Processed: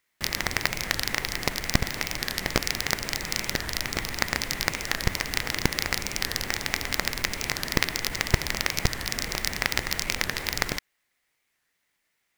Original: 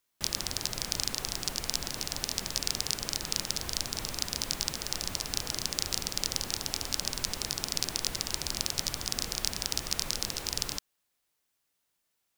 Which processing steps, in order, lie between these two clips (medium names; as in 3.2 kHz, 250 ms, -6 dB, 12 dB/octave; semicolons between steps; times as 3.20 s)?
square wave that keeps the level; peaking EQ 2 kHz +12 dB 0.5 oct; warped record 45 rpm, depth 160 cents; trim -1.5 dB